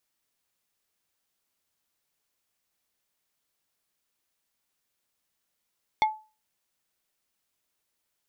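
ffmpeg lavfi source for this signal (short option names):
-f lavfi -i "aevalsrc='0.158*pow(10,-3*t/0.32)*sin(2*PI*865*t)+0.0794*pow(10,-3*t/0.107)*sin(2*PI*2162.5*t)+0.0398*pow(10,-3*t/0.061)*sin(2*PI*3460*t)+0.02*pow(10,-3*t/0.046)*sin(2*PI*4325*t)+0.01*pow(10,-3*t/0.034)*sin(2*PI*5622.5*t)':d=0.45:s=44100"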